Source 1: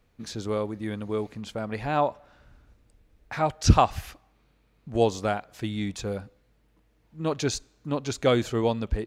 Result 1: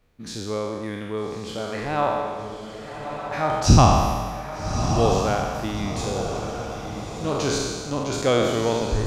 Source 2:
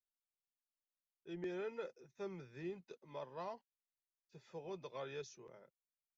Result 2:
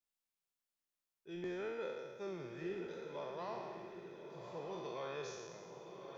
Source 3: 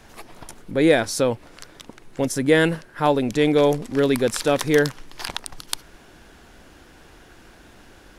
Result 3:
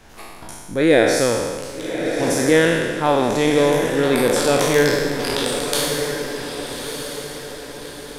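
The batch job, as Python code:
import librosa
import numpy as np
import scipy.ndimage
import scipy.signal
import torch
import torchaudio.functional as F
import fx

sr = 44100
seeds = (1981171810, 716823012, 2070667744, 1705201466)

y = fx.spec_trails(x, sr, decay_s=1.55)
y = fx.echo_diffused(y, sr, ms=1221, feedback_pct=44, wet_db=-7.0)
y = F.gain(torch.from_numpy(y), -1.0).numpy()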